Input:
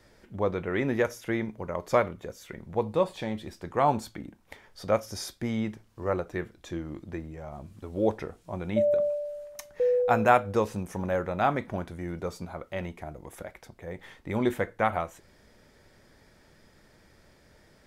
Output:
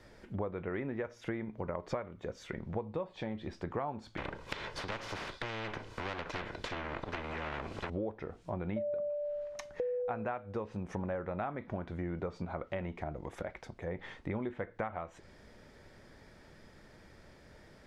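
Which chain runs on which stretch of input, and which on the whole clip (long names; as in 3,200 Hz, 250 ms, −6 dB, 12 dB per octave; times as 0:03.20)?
0:04.17–0:07.90: lower of the sound and its delayed copy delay 2 ms + every bin compressed towards the loudest bin 4 to 1
whole clip: high-shelf EQ 5,800 Hz −8.5 dB; downward compressor 16 to 1, threshold −35 dBFS; treble cut that deepens with the level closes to 2,600 Hz, closed at −36 dBFS; level +2 dB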